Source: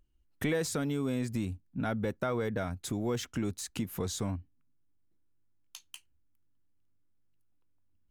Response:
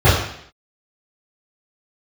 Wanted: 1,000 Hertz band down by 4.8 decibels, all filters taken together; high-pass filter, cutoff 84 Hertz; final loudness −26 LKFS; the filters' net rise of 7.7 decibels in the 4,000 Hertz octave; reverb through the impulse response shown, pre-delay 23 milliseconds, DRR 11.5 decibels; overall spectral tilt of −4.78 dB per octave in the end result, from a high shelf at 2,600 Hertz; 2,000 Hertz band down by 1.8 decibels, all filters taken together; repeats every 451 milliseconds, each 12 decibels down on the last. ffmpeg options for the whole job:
-filter_complex "[0:a]highpass=84,equalizer=frequency=1000:width_type=o:gain=-7.5,equalizer=frequency=2000:width_type=o:gain=-3,highshelf=frequency=2600:gain=3,equalizer=frequency=4000:width_type=o:gain=8,aecho=1:1:451|902|1353:0.251|0.0628|0.0157,asplit=2[link_01][link_02];[1:a]atrim=start_sample=2205,adelay=23[link_03];[link_02][link_03]afir=irnorm=-1:irlink=0,volume=-37.5dB[link_04];[link_01][link_04]amix=inputs=2:normalize=0,volume=6dB"

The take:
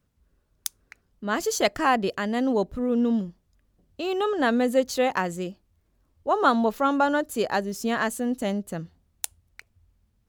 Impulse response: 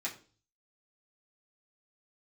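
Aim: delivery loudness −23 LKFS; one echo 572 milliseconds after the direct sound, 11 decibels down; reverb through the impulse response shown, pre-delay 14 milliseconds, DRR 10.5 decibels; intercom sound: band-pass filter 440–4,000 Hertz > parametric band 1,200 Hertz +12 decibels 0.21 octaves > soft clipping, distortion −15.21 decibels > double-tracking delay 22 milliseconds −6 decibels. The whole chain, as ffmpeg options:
-filter_complex "[0:a]aecho=1:1:572:0.282,asplit=2[link_01][link_02];[1:a]atrim=start_sample=2205,adelay=14[link_03];[link_02][link_03]afir=irnorm=-1:irlink=0,volume=-13dB[link_04];[link_01][link_04]amix=inputs=2:normalize=0,highpass=440,lowpass=4000,equalizer=frequency=1200:width_type=o:width=0.21:gain=12,asoftclip=threshold=-12.5dB,asplit=2[link_05][link_06];[link_06]adelay=22,volume=-6dB[link_07];[link_05][link_07]amix=inputs=2:normalize=0,volume=2dB"

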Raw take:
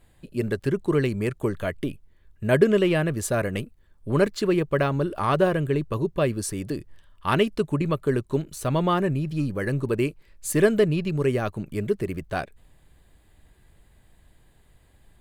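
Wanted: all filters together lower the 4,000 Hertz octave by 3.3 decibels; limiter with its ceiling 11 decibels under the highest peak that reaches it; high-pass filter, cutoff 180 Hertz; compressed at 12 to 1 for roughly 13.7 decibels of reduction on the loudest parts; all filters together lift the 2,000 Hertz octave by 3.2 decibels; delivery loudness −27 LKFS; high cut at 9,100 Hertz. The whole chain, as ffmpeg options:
ffmpeg -i in.wav -af "highpass=180,lowpass=9100,equalizer=frequency=2000:width_type=o:gain=6,equalizer=frequency=4000:width_type=o:gain=-8.5,acompressor=threshold=-26dB:ratio=12,volume=9dB,alimiter=limit=-16dB:level=0:latency=1" out.wav

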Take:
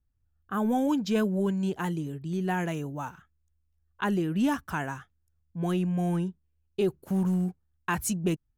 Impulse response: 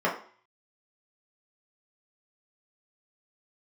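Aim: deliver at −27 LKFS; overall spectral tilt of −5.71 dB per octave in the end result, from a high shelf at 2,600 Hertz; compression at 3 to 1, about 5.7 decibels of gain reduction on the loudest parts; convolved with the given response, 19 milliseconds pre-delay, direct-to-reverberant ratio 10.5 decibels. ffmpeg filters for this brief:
-filter_complex "[0:a]highshelf=frequency=2600:gain=-5.5,acompressor=threshold=-30dB:ratio=3,asplit=2[link_01][link_02];[1:a]atrim=start_sample=2205,adelay=19[link_03];[link_02][link_03]afir=irnorm=-1:irlink=0,volume=-24.5dB[link_04];[link_01][link_04]amix=inputs=2:normalize=0,volume=6.5dB"

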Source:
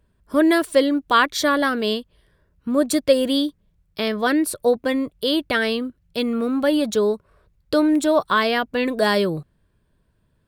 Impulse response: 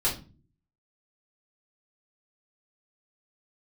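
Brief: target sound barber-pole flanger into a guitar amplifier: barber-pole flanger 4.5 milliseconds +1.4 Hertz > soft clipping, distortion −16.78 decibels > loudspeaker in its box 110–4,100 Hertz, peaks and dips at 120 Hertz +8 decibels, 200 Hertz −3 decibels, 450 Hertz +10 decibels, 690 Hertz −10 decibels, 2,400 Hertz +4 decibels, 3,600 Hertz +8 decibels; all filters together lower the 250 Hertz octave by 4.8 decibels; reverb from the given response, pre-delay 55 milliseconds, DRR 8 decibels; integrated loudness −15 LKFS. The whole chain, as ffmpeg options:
-filter_complex "[0:a]equalizer=frequency=250:width_type=o:gain=-6.5,asplit=2[link_01][link_02];[1:a]atrim=start_sample=2205,adelay=55[link_03];[link_02][link_03]afir=irnorm=-1:irlink=0,volume=-17.5dB[link_04];[link_01][link_04]amix=inputs=2:normalize=0,asplit=2[link_05][link_06];[link_06]adelay=4.5,afreqshift=1.4[link_07];[link_05][link_07]amix=inputs=2:normalize=1,asoftclip=threshold=-15dB,highpass=110,equalizer=frequency=120:width_type=q:width=4:gain=8,equalizer=frequency=200:width_type=q:width=4:gain=-3,equalizer=frequency=450:width_type=q:width=4:gain=10,equalizer=frequency=690:width_type=q:width=4:gain=-10,equalizer=frequency=2400:width_type=q:width=4:gain=4,equalizer=frequency=3600:width_type=q:width=4:gain=8,lowpass=frequency=4100:width=0.5412,lowpass=frequency=4100:width=1.3066,volume=8.5dB"

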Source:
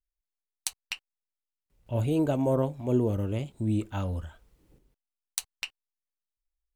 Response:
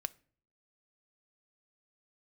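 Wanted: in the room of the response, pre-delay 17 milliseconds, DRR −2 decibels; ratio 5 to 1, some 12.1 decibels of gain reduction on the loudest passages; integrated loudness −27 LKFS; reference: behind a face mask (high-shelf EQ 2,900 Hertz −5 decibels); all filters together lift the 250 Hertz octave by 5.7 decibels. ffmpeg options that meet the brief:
-filter_complex "[0:a]equalizer=frequency=250:width_type=o:gain=7,acompressor=threshold=-30dB:ratio=5,asplit=2[link_01][link_02];[1:a]atrim=start_sample=2205,adelay=17[link_03];[link_02][link_03]afir=irnorm=-1:irlink=0,volume=3dB[link_04];[link_01][link_04]amix=inputs=2:normalize=0,highshelf=frequency=2900:gain=-5,volume=6dB"

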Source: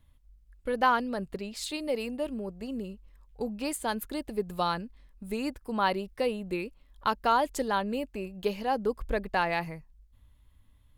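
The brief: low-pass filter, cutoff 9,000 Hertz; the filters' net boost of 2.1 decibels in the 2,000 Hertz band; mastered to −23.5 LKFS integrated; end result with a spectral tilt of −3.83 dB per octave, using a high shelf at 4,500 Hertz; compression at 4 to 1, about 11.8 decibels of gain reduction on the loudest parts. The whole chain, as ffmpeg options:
ffmpeg -i in.wav -af "lowpass=9000,equalizer=frequency=2000:width_type=o:gain=4,highshelf=frequency=4500:gain=-6.5,acompressor=threshold=-33dB:ratio=4,volume=14.5dB" out.wav

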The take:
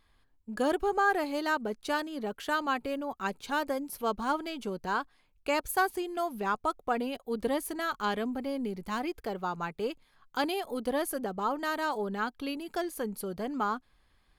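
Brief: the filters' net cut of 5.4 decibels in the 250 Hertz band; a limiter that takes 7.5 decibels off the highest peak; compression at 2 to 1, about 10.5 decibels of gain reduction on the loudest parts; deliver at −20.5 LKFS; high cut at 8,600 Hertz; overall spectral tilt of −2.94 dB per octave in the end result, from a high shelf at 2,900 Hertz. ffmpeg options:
ffmpeg -i in.wav -af "lowpass=8600,equalizer=frequency=250:width_type=o:gain=-7,highshelf=frequency=2900:gain=6.5,acompressor=threshold=-41dB:ratio=2,volume=22dB,alimiter=limit=-9.5dB:level=0:latency=1" out.wav

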